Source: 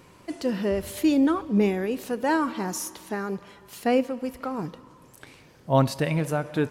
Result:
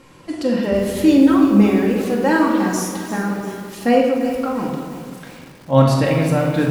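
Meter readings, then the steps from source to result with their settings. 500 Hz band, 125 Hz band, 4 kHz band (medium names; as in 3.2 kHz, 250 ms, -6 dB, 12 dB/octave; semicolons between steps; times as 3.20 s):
+8.0 dB, +9.5 dB, +7.0 dB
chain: low-pass 12 kHz 12 dB/octave; simulated room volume 1200 m³, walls mixed, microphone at 2.2 m; bit-crushed delay 345 ms, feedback 55%, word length 6-bit, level -12 dB; trim +3 dB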